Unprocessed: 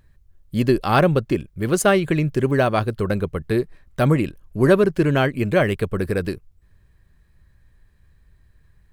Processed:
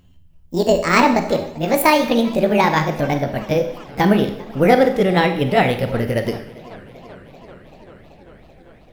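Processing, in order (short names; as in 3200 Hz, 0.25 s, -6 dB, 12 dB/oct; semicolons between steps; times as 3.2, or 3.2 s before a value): gliding pitch shift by +9.5 st ending unshifted; Schroeder reverb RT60 0.66 s, combs from 30 ms, DRR 7.5 dB; warbling echo 0.389 s, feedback 79%, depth 157 cents, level -23 dB; gain +3 dB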